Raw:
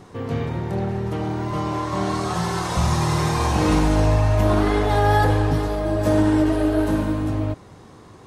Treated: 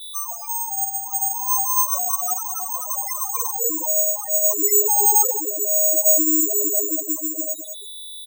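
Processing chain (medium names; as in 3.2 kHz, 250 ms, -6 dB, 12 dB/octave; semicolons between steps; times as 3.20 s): frequency weighting ITU-R 468; reverb removal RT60 0.99 s; bass shelf 210 Hz +11 dB; band-stop 3.9 kHz; in parallel at +2.5 dB: compression 6:1, threshold -34 dBFS, peak gain reduction 16 dB; on the sum: high-pass sweep 870 Hz -> 410 Hz, 0.63–4.10 s; on a send: echo whose repeats swap between lows and highs 203 ms, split 1 kHz, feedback 54%, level -9 dB; on the sum: whistle 3.5 kHz -35 dBFS; delay 1167 ms -23.5 dB; careless resampling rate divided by 6×, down filtered, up zero stuff; loudest bins only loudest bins 8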